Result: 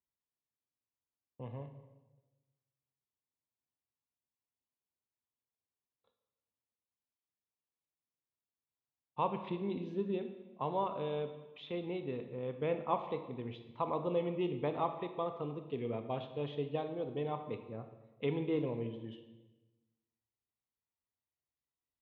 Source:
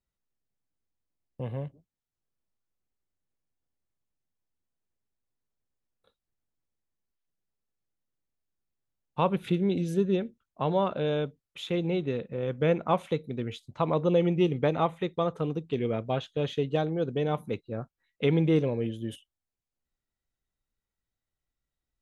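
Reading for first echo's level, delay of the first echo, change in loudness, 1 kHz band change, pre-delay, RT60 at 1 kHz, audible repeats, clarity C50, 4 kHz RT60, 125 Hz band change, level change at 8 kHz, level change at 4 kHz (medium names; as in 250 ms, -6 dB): no echo, no echo, -9.5 dB, -5.5 dB, 22 ms, 1.1 s, no echo, 9.0 dB, 1.0 s, -12.5 dB, no reading, -11.0 dB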